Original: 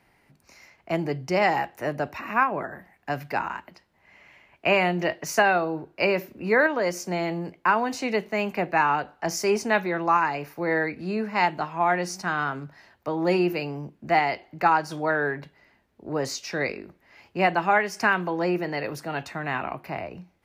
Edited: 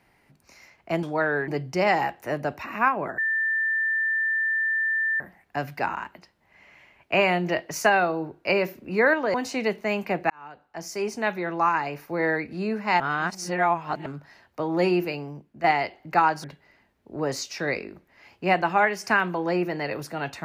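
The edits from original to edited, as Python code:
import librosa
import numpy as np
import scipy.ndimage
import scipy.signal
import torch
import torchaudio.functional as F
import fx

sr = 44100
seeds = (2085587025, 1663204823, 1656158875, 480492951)

y = fx.edit(x, sr, fx.insert_tone(at_s=2.73, length_s=2.02, hz=1780.0, db=-21.5),
    fx.cut(start_s=6.87, length_s=0.95),
    fx.fade_in_span(start_s=8.78, length_s=2.08, curve='qsin'),
    fx.reverse_span(start_s=11.48, length_s=1.06),
    fx.fade_out_to(start_s=13.45, length_s=0.67, floor_db=-8.5),
    fx.move(start_s=14.92, length_s=0.45, to_s=1.03), tone=tone)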